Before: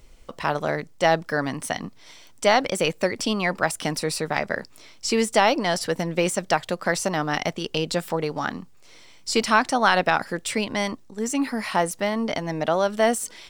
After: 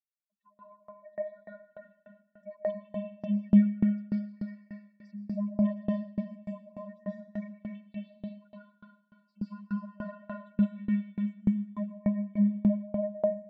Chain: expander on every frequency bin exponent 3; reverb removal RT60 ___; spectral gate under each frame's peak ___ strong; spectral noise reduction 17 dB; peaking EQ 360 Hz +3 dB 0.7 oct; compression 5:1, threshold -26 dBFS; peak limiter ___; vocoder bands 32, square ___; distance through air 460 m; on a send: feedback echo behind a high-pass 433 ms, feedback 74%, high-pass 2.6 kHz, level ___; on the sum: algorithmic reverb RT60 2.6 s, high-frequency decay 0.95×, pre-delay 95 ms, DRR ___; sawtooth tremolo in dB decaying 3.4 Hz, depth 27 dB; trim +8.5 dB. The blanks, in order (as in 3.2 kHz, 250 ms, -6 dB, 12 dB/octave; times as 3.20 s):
1.2 s, -15 dB, -27.5 dBFS, 205 Hz, -23.5 dB, -5.5 dB